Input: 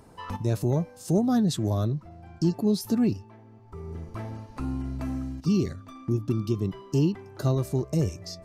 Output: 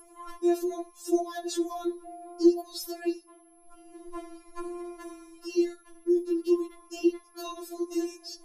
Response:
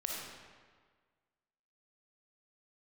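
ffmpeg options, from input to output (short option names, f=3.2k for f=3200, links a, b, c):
-filter_complex "[0:a]aeval=exprs='val(0)+0.00501*sin(2*PI*11000*n/s)':c=same,asplit=2[a][b];[1:a]atrim=start_sample=2205,atrim=end_sample=3969[c];[b][c]afir=irnorm=-1:irlink=0,volume=-13.5dB[d];[a][d]amix=inputs=2:normalize=0,afftfilt=real='re*4*eq(mod(b,16),0)':imag='im*4*eq(mod(b,16),0)':win_size=2048:overlap=0.75"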